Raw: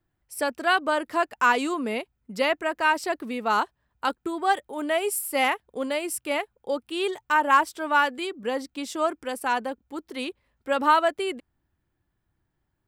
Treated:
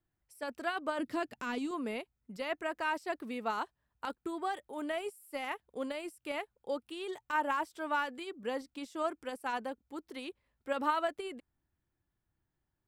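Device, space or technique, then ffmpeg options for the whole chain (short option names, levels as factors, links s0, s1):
de-esser from a sidechain: -filter_complex "[0:a]asettb=1/sr,asplit=3[s0][s1][s2];[s0]atrim=end=0.994[s3];[s1]atrim=start=0.99:end=1.71,asetpts=PTS-STARTPTS,afade=t=in:d=0.004:c=qsin,afade=t=out:st=0.716:d=0.004:c=qsin,equalizer=f=125:t=o:w=1:g=10,equalizer=f=250:t=o:w=1:g=10,equalizer=f=1000:t=o:w=1:g=-5,equalizer=f=4000:t=o:w=1:g=4[s4];[s2]atrim=start=1.706[s5];[s3][s4]acrossfade=d=0.004:c1=hsin:c2=qsin[s6];[s6][s5]acrossfade=d=0.004:c1=qsin:c2=hsin,asplit=2[s7][s8];[s8]highpass=f=5100:w=0.5412,highpass=f=5100:w=1.3066,apad=whole_len=567813[s9];[s7][s9]sidechaincompress=threshold=0.00447:ratio=12:attack=2.5:release=36,volume=0.398"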